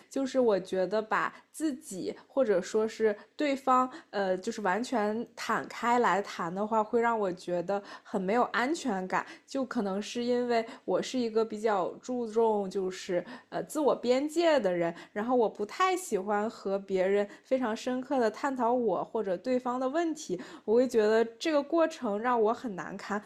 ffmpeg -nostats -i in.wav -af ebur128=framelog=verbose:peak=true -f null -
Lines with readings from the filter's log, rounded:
Integrated loudness:
  I:         -30.1 LUFS
  Threshold: -40.1 LUFS
Loudness range:
  LRA:         2.2 LU
  Threshold: -50.2 LUFS
  LRA low:   -31.3 LUFS
  LRA high:  -29.1 LUFS
True peak:
  Peak:      -13.7 dBFS